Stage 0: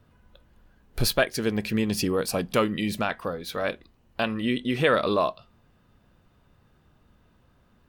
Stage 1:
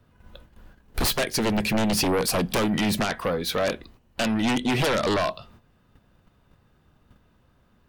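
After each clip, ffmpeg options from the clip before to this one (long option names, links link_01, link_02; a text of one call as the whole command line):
ffmpeg -i in.wav -filter_complex "[0:a]agate=range=-9dB:threshold=-57dB:ratio=16:detection=peak,acrossover=split=290|3000[link_01][link_02][link_03];[link_02]acompressor=threshold=-26dB:ratio=4[link_04];[link_01][link_04][link_03]amix=inputs=3:normalize=0,aeval=exprs='0.251*sin(PI/2*3.98*val(0)/0.251)':channel_layout=same,volume=-7dB" out.wav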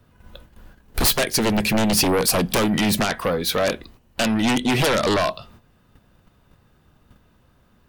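ffmpeg -i in.wav -af "highshelf=frequency=6400:gain=5,volume=3.5dB" out.wav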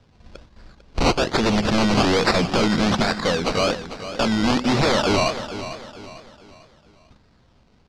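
ffmpeg -i in.wav -af "acrusher=samples=20:mix=1:aa=0.000001:lfo=1:lforange=12:lforate=1.2,lowpass=frequency=4900:width_type=q:width=1.8,aecho=1:1:448|896|1344|1792:0.251|0.098|0.0382|0.0149" out.wav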